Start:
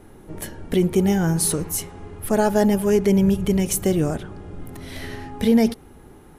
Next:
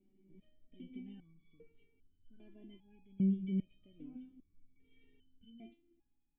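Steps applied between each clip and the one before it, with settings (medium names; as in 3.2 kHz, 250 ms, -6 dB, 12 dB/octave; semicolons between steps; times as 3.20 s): cascade formant filter i; resonator arpeggio 2.5 Hz 190–1500 Hz; trim -2 dB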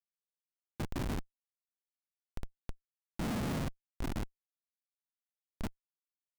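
whisper effect; flutter echo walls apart 8.5 m, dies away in 0.32 s; Schmitt trigger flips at -46.5 dBFS; trim +9 dB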